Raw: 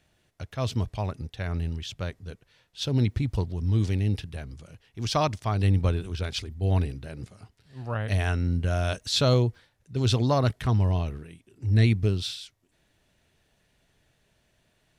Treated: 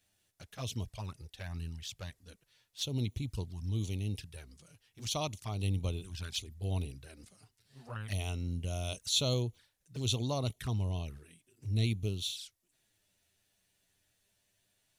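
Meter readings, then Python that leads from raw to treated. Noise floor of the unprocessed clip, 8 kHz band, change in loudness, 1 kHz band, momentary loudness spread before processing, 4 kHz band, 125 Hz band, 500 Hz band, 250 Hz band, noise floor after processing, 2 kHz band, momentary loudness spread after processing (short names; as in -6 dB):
-69 dBFS, -0.5 dB, -9.5 dB, -13.0 dB, 17 LU, -4.5 dB, -10.5 dB, -11.5 dB, -10.5 dB, -78 dBFS, -11.0 dB, 15 LU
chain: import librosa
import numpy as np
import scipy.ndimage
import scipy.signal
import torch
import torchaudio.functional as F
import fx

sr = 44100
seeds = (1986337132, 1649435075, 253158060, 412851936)

y = librosa.effects.preemphasis(x, coef=0.8, zi=[0.0])
y = fx.env_flanger(y, sr, rest_ms=10.7, full_db=-36.0)
y = y * 10.0 ** (3.5 / 20.0)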